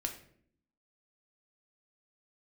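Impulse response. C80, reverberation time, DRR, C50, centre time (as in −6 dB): 13.5 dB, 0.60 s, 2.5 dB, 9.5 dB, 15 ms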